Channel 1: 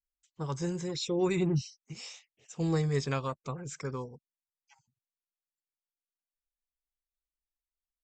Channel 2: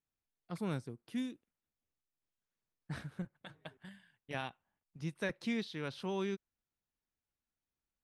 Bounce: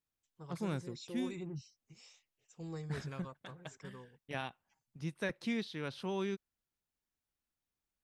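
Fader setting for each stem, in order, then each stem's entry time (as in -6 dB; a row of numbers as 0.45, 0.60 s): -15.0, 0.0 dB; 0.00, 0.00 s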